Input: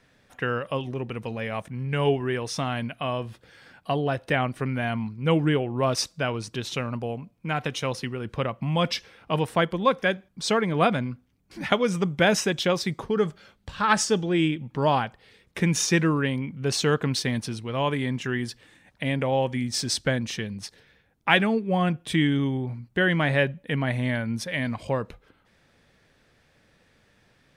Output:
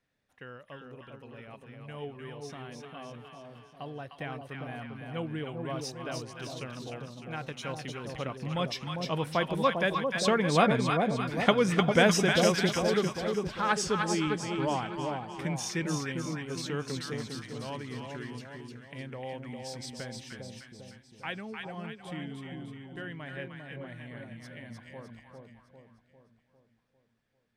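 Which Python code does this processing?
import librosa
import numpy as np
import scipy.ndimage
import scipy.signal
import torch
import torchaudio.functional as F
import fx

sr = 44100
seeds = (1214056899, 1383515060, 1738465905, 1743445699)

y = fx.doppler_pass(x, sr, speed_mps=8, closest_m=12.0, pass_at_s=11.35)
y = fx.echo_split(y, sr, split_hz=900.0, low_ms=400, high_ms=304, feedback_pct=52, wet_db=-3.5)
y = y * librosa.db_to_amplitude(-1.5)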